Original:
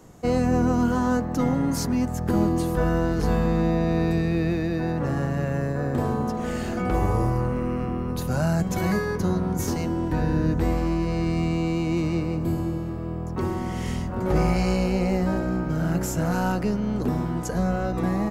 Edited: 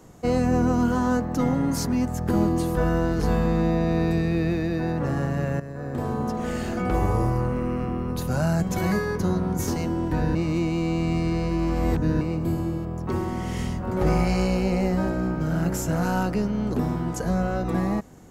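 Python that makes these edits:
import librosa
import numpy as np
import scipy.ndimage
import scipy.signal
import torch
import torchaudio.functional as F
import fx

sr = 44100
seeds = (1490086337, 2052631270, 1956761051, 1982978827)

y = fx.edit(x, sr, fx.fade_in_from(start_s=5.6, length_s=0.73, floor_db=-12.5),
    fx.reverse_span(start_s=10.35, length_s=1.86),
    fx.cut(start_s=12.85, length_s=0.29), tone=tone)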